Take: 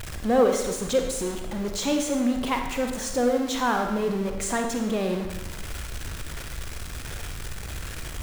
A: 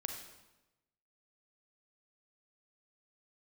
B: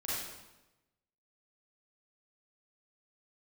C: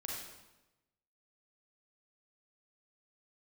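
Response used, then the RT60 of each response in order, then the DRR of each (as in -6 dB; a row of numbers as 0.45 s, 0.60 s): A; 1.0 s, 1.0 s, 1.0 s; 3.5 dB, -9.5 dB, -3.0 dB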